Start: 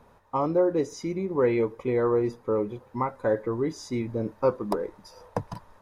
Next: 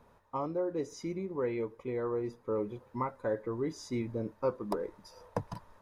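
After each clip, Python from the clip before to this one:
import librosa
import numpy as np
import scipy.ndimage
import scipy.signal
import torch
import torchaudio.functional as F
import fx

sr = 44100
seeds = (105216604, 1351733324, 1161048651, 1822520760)

y = fx.rider(x, sr, range_db=4, speed_s=0.5)
y = fx.notch(y, sr, hz=780.0, q=18.0)
y = y * 10.0 ** (-8.0 / 20.0)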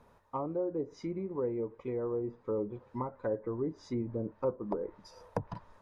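y = fx.env_lowpass_down(x, sr, base_hz=770.0, full_db=-30.0)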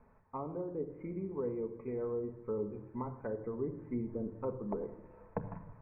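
y = scipy.signal.sosfilt(scipy.signal.butter(16, 2500.0, 'lowpass', fs=sr, output='sos'), x)
y = fx.low_shelf(y, sr, hz=120.0, db=6.0)
y = fx.room_shoebox(y, sr, seeds[0], volume_m3=3300.0, walls='furnished', distance_m=1.5)
y = y * 10.0 ** (-5.0 / 20.0)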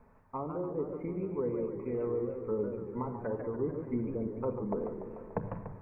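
y = fx.echo_warbled(x, sr, ms=147, feedback_pct=67, rate_hz=2.8, cents=203, wet_db=-8)
y = y * 10.0 ** (3.0 / 20.0)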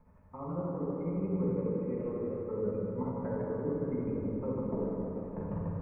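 y = fx.low_shelf(x, sr, hz=220.0, db=8.0)
y = y * (1.0 - 0.7 / 2.0 + 0.7 / 2.0 * np.cos(2.0 * np.pi * 12.0 * (np.arange(len(y)) / sr)))
y = fx.rev_fdn(y, sr, rt60_s=3.3, lf_ratio=1.0, hf_ratio=0.55, size_ms=33.0, drr_db=-7.0)
y = y * 10.0 ** (-7.0 / 20.0)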